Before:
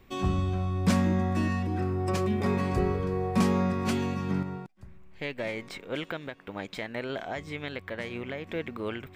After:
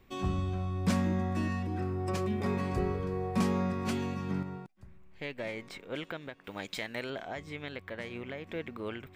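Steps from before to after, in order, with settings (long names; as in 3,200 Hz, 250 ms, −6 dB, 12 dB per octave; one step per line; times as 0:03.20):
0:06.44–0:07.10: high-shelf EQ 2,800 Hz +11.5 dB
level −4.5 dB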